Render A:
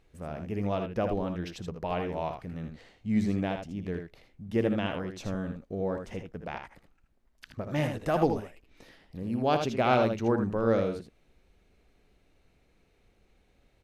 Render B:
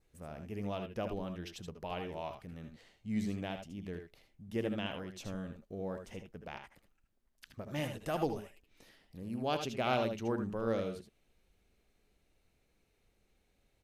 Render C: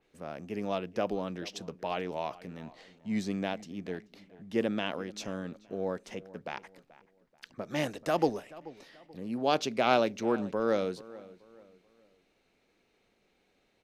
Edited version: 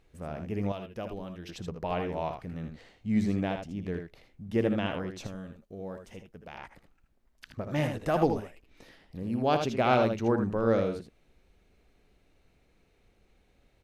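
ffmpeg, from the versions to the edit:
ffmpeg -i take0.wav -i take1.wav -filter_complex "[1:a]asplit=2[link_01][link_02];[0:a]asplit=3[link_03][link_04][link_05];[link_03]atrim=end=0.722[link_06];[link_01]atrim=start=0.718:end=1.492[link_07];[link_04]atrim=start=1.488:end=5.272[link_08];[link_02]atrim=start=5.268:end=6.582[link_09];[link_05]atrim=start=6.578[link_10];[link_06][link_07]acrossfade=duration=0.004:curve1=hsin:curve2=hsin[link_11];[link_11][link_08]acrossfade=duration=0.004:curve1=hsin:curve2=hsin[link_12];[link_12][link_09]acrossfade=duration=0.004:curve1=hsin:curve2=hsin[link_13];[link_13][link_10]acrossfade=duration=0.004:curve1=hsin:curve2=hsin" out.wav

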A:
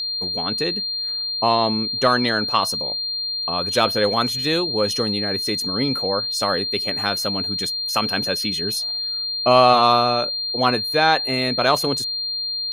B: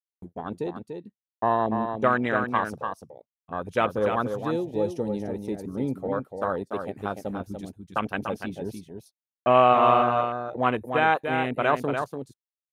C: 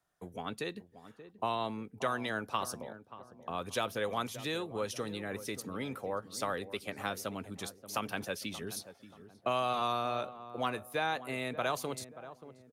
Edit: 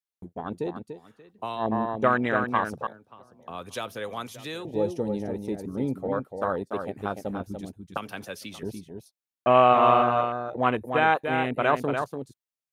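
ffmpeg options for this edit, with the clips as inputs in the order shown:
ffmpeg -i take0.wav -i take1.wav -i take2.wav -filter_complex "[2:a]asplit=3[link_01][link_02][link_03];[1:a]asplit=4[link_04][link_05][link_06][link_07];[link_04]atrim=end=1[link_08];[link_01]atrim=start=0.9:end=1.66[link_09];[link_05]atrim=start=1.56:end=2.872[link_10];[link_02]atrim=start=2.868:end=4.652[link_11];[link_06]atrim=start=4.648:end=7.972[link_12];[link_03]atrim=start=7.968:end=8.632[link_13];[link_07]atrim=start=8.628[link_14];[link_08][link_09]acrossfade=duration=0.1:curve1=tri:curve2=tri[link_15];[link_15][link_10]acrossfade=duration=0.1:curve1=tri:curve2=tri[link_16];[link_16][link_11]acrossfade=duration=0.004:curve1=hsin:curve2=hsin[link_17];[link_17][link_12]acrossfade=duration=0.004:curve1=hsin:curve2=hsin[link_18];[link_18][link_13]acrossfade=duration=0.004:curve1=hsin:curve2=hsin[link_19];[link_19][link_14]acrossfade=duration=0.004:curve1=hsin:curve2=hsin" out.wav

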